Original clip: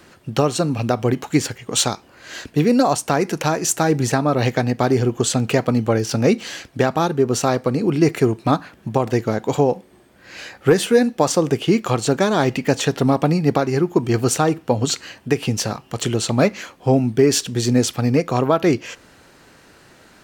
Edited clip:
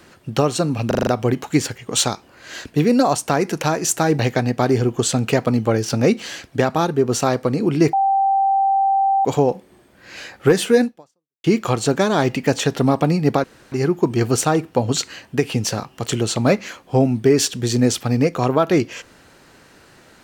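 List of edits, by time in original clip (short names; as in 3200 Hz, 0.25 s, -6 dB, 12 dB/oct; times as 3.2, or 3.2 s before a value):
0.87 stutter 0.04 s, 6 plays
3.99–4.4 cut
8.14–9.46 bleep 782 Hz -13.5 dBFS
11.05–11.65 fade out exponential
13.65 insert room tone 0.28 s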